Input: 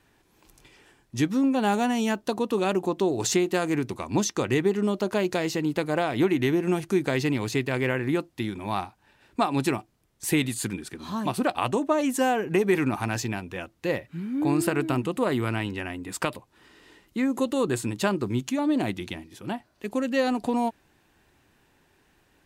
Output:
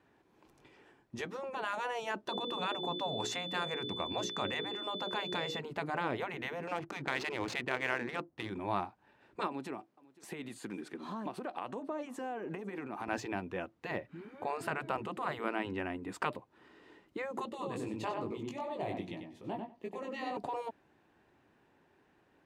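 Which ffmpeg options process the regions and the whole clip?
-filter_complex "[0:a]asettb=1/sr,asplit=3[s0][s1][s2];[s0]atrim=end=2.284[s3];[s1]atrim=start=2.28:end=5.59,asetpts=PTS-STARTPTS,afade=t=in:d=0.004:c=qsin,afade=t=out:st=3.306:d=0.004:c=qsin,bandreject=f=60:t=h:w=6,bandreject=f=120:t=h:w=6,bandreject=f=180:t=h:w=6,bandreject=f=240:t=h:w=6,bandreject=f=300:t=h:w=6,bandreject=f=360:t=h:w=6,bandreject=f=420:t=h:w=6,bandreject=f=480:t=h:w=6,bandreject=f=540:t=h:w=6,aeval=exprs='val(0)+0.0355*sin(2*PI*3500*n/s)':c=same[s4];[s2]atrim=start=5.586[s5];[s3][s4]acrossfade=d=0.004:c1=hsin:c2=qsin[s6];[s6][s5]acrossfade=d=0.004:c1=qsin:c2=hsin,asettb=1/sr,asplit=3[s7][s8][s9];[s7]atrim=end=6.674[s10];[s8]atrim=start=6.67:end=8.5,asetpts=PTS-STARTPTS,afade=t=in:d=0.004:c=qsin,afade=t=out:st=1.826:d=0.004:c=qsin,highshelf=f=3500:g=11.5,adynamicsmooth=sensitivity=6:basefreq=940[s11];[s9]atrim=start=8.496[s12];[s10][s11]acrossfade=d=0.004:c1=hsin:c2=qsin[s13];[s13][s12]acrossfade=d=0.004:c1=qsin:c2=hsin,asettb=1/sr,asplit=3[s14][s15][s16];[s14]atrim=end=9.474[s17];[s15]atrim=start=9.47:end=13.08,asetpts=PTS-STARTPTS,afade=t=in:d=0.004:c=qsin,afade=t=out:st=3.606:d=0.004:c=qsin,highpass=200,acompressor=threshold=0.0251:ratio=5:attack=3.2:release=140:knee=1:detection=peak,aecho=1:1:503:0.0668,atrim=end_sample=159201[s18];[s16]atrim=start=13.076[s19];[s17][s18]acrossfade=d=0.004:c1=hsin:c2=qsin[s20];[s20][s19]acrossfade=d=0.004:c1=qsin:c2=hsin,asettb=1/sr,asplit=3[s21][s22][s23];[s21]atrim=end=17.494[s24];[s22]atrim=start=17.49:end=20.37,asetpts=PTS-STARTPTS,afade=t=in:d=0.004:c=qsin,afade=t=out:st=2.876:d=0.004:c=qsin,equalizer=f=1500:w=3.8:g=-13,flanger=delay=17.5:depth=2.8:speed=2.5,asplit=2[s25][s26];[s26]adelay=95,lowpass=f=3400:p=1,volume=0.562,asplit=2[s27][s28];[s28]adelay=95,lowpass=f=3400:p=1,volume=0.15,asplit=2[s29][s30];[s30]adelay=95,lowpass=f=3400:p=1,volume=0.15[s31];[s25][s27][s29][s31]amix=inputs=4:normalize=0,atrim=end_sample=127008[s32];[s23]atrim=start=20.366[s33];[s24][s32]acrossfade=d=0.004:c1=hsin:c2=qsin[s34];[s34][s33]acrossfade=d=0.004:c1=qsin:c2=hsin,lowpass=f=1000:p=1,afftfilt=real='re*lt(hypot(re,im),0.2)':imag='im*lt(hypot(re,im),0.2)':win_size=1024:overlap=0.75,highpass=f=250:p=1"

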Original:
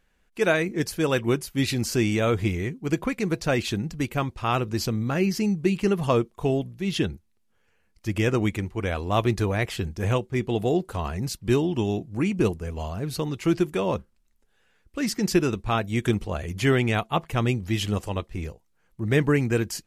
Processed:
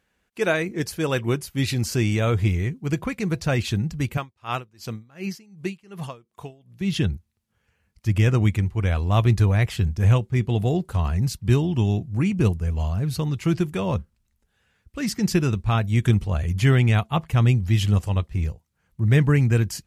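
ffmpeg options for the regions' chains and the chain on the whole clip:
-filter_complex "[0:a]asettb=1/sr,asplit=3[s0][s1][s2];[s0]atrim=end=4.174[s3];[s1]atrim=start=4.17:end=6.81,asetpts=PTS-STARTPTS,afade=t=in:d=0.004:c=qsin,afade=t=out:st=2.636:d=0.004:c=qsin,highpass=f=390:p=1,aeval=exprs='val(0)*pow(10,-26*(0.5-0.5*cos(2*PI*2.7*n/s))/20)':c=same[s4];[s2]atrim=start=6.806[s5];[s3][s4]acrossfade=d=0.004:c1=hsin:c2=qsin[s6];[s6][s5]acrossfade=d=0.004:c1=qsin:c2=hsin,asubboost=boost=5:cutoff=140,highpass=73"

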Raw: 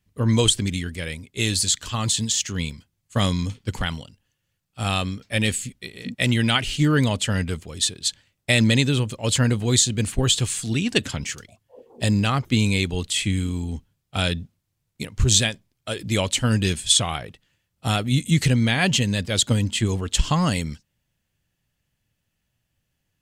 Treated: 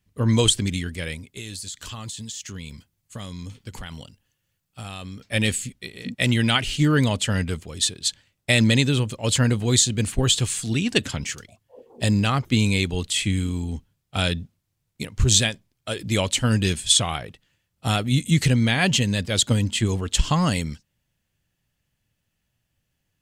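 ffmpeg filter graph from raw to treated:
-filter_complex "[0:a]asettb=1/sr,asplit=3[s0][s1][s2];[s0]atrim=end=1.264[s3];[s1]atrim=start=1.26:end=5.22,asetpts=PTS-STARTPTS,afade=t=in:d=0.004:c=qsin,afade=t=out:st=3.956:d=0.004:c=qsin,highshelf=f=11000:g=6.5,acompressor=threshold=0.0251:ratio=6:attack=3.2:release=140:knee=1:detection=peak[s4];[s2]atrim=start=5.216[s5];[s3][s4]acrossfade=d=0.004:c1=hsin:c2=qsin[s6];[s6][s5]acrossfade=d=0.004:c1=qsin:c2=hsin"

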